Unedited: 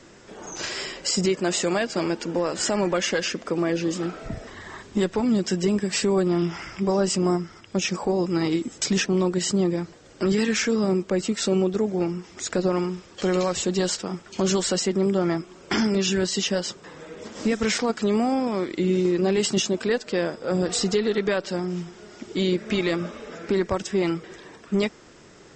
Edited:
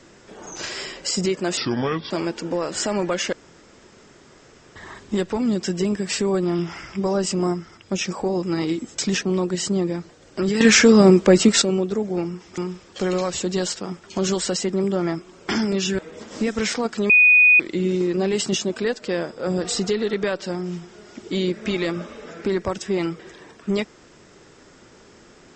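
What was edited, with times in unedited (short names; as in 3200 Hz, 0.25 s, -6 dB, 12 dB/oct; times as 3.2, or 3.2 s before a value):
1.57–1.94 speed 69%
3.16–4.59 room tone
10.44–11.45 gain +10.5 dB
12.41–12.8 cut
16.21–17.03 cut
18.14–18.64 bleep 2480 Hz -9.5 dBFS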